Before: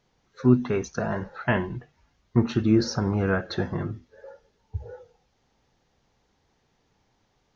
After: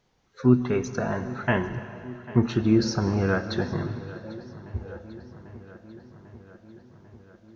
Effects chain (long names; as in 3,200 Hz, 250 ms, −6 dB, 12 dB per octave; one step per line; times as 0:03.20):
feedback echo with a low-pass in the loop 795 ms, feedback 71%, low-pass 4,500 Hz, level −18 dB
on a send at −12 dB: convolution reverb RT60 2.8 s, pre-delay 105 ms